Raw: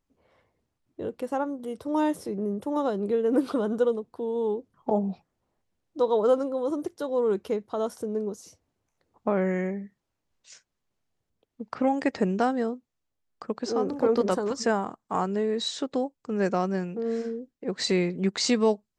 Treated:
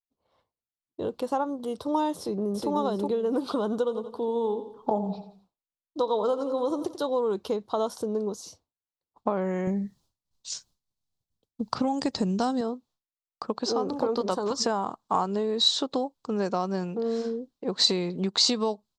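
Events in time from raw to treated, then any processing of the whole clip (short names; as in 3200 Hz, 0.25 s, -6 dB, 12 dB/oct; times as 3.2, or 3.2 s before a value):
2.17–2.7 echo throw 0.37 s, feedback 25%, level -1 dB
3.79–7 feedback echo 87 ms, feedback 42%, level -13 dB
9.67–12.61 tone controls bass +11 dB, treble +11 dB
whole clip: compressor, threshold -26 dBFS; expander -56 dBFS; graphic EQ 1000/2000/4000 Hz +8/-9/+11 dB; gain +1.5 dB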